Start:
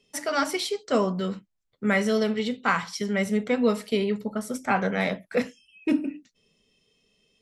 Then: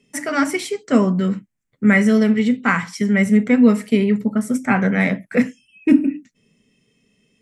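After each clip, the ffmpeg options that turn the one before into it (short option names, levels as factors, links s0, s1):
-af "equalizer=f=125:t=o:w=1:g=10,equalizer=f=250:t=o:w=1:g=11,equalizer=f=2000:t=o:w=1:g=10,equalizer=f=4000:t=o:w=1:g=-7,equalizer=f=8000:t=o:w=1:g=7"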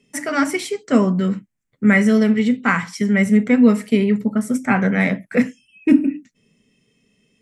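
-af anull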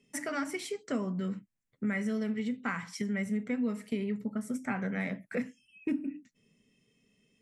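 -af "acompressor=threshold=0.0501:ratio=2.5,volume=0.398"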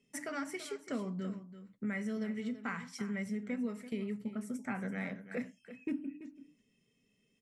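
-af "aecho=1:1:335:0.224,volume=0.562"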